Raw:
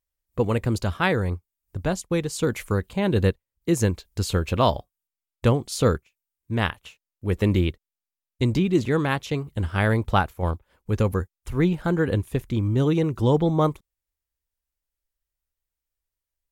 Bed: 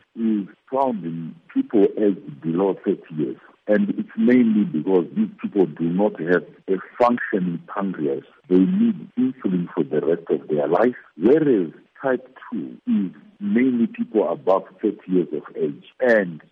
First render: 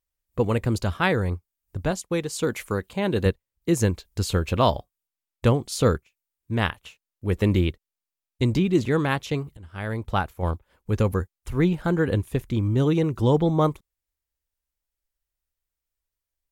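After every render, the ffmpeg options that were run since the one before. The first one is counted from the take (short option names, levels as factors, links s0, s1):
-filter_complex "[0:a]asettb=1/sr,asplit=3[s0][s1][s2];[s0]atrim=end=1.914[s3];[s1]atrim=start=1.91:end=3.26,asetpts=PTS-STARTPTS,afade=t=in:d=0.004:c=qsin,afade=t=out:st=1.346:d=0.004:c=qsin,lowshelf=f=120:g=-10.5[s4];[s2]atrim=start=3.256[s5];[s3][s4]acrossfade=d=0.004:c1=hsin:c2=qsin[s6];[s6][s5]acrossfade=d=0.004:c1=qsin:c2=hsin,asplit=2[s7][s8];[s7]atrim=end=9.57,asetpts=PTS-STARTPTS,afade=t=out:st=9.566:d=0.004:c=hsin:silence=0.0707946[s9];[s8]atrim=start=9.57,asetpts=PTS-STARTPTS,afade=t=in:d=0.97:silence=0.0707946[s10];[s9][s10]concat=n=2:v=0:a=1"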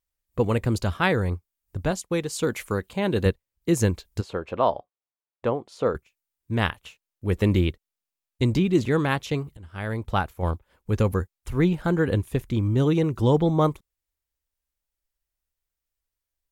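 -filter_complex "[0:a]asplit=3[s0][s1][s2];[s0]afade=t=out:st=4.2:d=0.02[s3];[s1]bandpass=f=710:t=q:w=0.84,afade=t=in:st=4.2:d=0.02,afade=t=out:st=5.94:d=0.02[s4];[s2]afade=t=in:st=5.94:d=0.02[s5];[s3][s4][s5]amix=inputs=3:normalize=0"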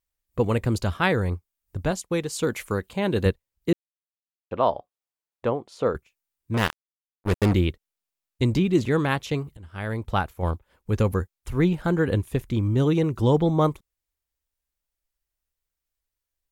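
-filter_complex "[0:a]asettb=1/sr,asplit=3[s0][s1][s2];[s0]atrim=end=6.544[s3];[s1]atrim=start=6.54:end=7.54,asetpts=PTS-STARTPTS,afade=t=in:d=0.004:c=qsin,afade=t=out:st=0.996:d=0.004:c=qsin,acrusher=bits=3:mix=0:aa=0.5[s4];[s2]atrim=start=7.536[s5];[s3][s4]acrossfade=d=0.004:c1=hsin:c2=qsin[s6];[s6][s5]acrossfade=d=0.004:c1=qsin:c2=hsin,asplit=3[s7][s8][s9];[s7]atrim=end=3.73,asetpts=PTS-STARTPTS,afade=t=out:st=3.726:d=0.004:c=hsin[s10];[s8]atrim=start=3.73:end=4.51,asetpts=PTS-STARTPTS,volume=0[s11];[s9]atrim=start=4.51,asetpts=PTS-STARTPTS,afade=t=in:d=0.004:c=hsin[s12];[s10][s11][s12]concat=n=3:v=0:a=1"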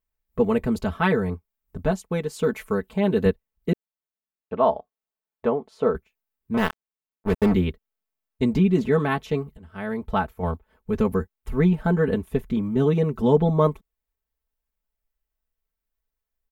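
-af "equalizer=f=6900:t=o:w=2.7:g=-11,aecho=1:1:4.6:0.87"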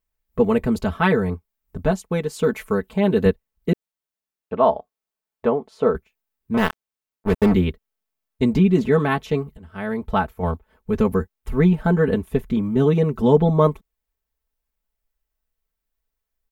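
-af "volume=1.41"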